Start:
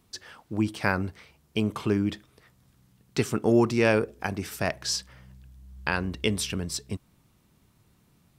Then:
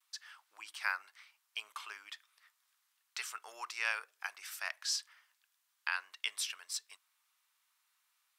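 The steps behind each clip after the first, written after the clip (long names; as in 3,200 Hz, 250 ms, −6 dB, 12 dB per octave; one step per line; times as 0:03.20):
noise gate with hold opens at −57 dBFS
high-pass filter 1,100 Hz 24 dB per octave
level −6 dB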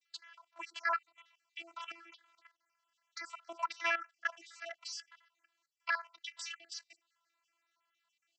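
time-frequency cells dropped at random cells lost 51%
channel vocoder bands 32, saw 336 Hz
output level in coarse steps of 13 dB
level +8.5 dB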